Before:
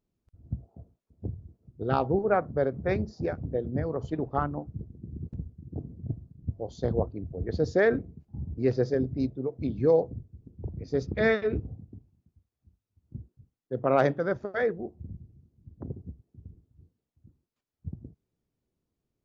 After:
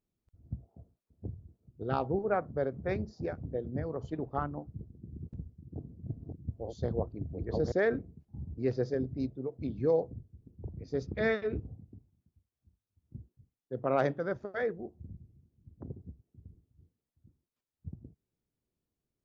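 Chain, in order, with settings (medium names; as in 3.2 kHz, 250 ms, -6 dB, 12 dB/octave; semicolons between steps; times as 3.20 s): 5.42–7.72 s: chunks repeated in reverse 621 ms, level -2 dB; trim -5.5 dB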